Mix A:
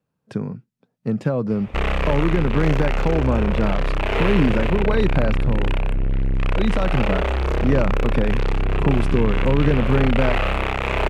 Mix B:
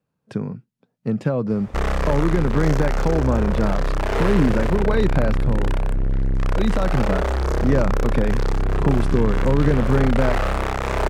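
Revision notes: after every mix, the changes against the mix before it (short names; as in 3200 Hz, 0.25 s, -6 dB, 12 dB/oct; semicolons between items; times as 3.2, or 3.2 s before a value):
background: add EQ curve 1700 Hz 0 dB, 2600 Hz -10 dB, 5300 Hz +7 dB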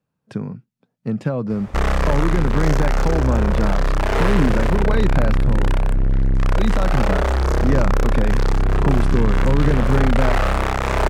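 background +3.5 dB; master: add bell 440 Hz -2.5 dB 0.85 oct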